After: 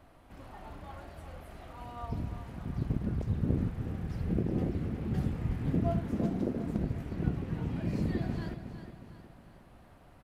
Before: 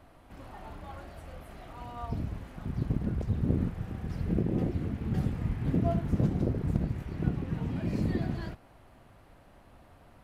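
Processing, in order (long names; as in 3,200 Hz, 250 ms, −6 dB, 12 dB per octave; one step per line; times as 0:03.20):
0:06.04–0:06.79: low shelf with overshoot 160 Hz −8 dB, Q 1.5
repeating echo 364 ms, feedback 46%, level −10 dB
level −2 dB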